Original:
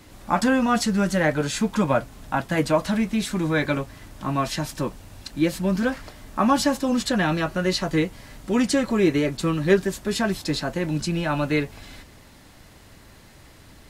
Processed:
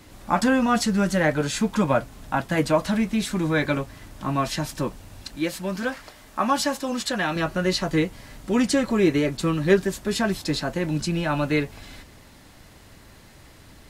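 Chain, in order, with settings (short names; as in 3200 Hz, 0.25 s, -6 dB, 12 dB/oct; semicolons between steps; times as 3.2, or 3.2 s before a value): 5.36–7.36 low shelf 310 Hz -10.5 dB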